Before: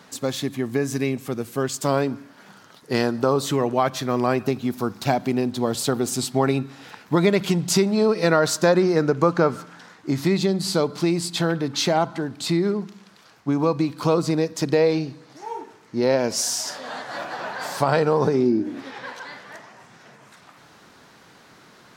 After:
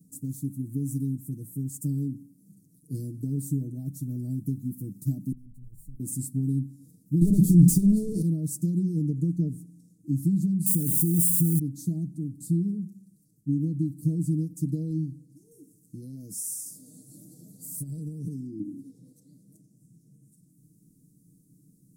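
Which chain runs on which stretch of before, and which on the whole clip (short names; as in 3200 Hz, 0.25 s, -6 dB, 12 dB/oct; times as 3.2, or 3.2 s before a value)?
5.32–6 minimum comb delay 0.71 ms + passive tone stack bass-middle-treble 10-0-1
7.21–8.22 overdrive pedal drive 29 dB, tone 2300 Hz, clips at -5.5 dBFS + fast leveller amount 70%
10.66–11.59 switching spikes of -16 dBFS + bell 4000 Hz -12.5 dB 0.33 oct + fast leveller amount 70%
15.51–18.6 high shelf 4100 Hz +11.5 dB + compressor 2.5:1, threshold -26 dBFS
whole clip: elliptic band-stop 240–9200 Hz, stop band 60 dB; comb 6.5 ms, depth 88%; dynamic EQ 500 Hz, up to -8 dB, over -53 dBFS, Q 4.9; gain -3.5 dB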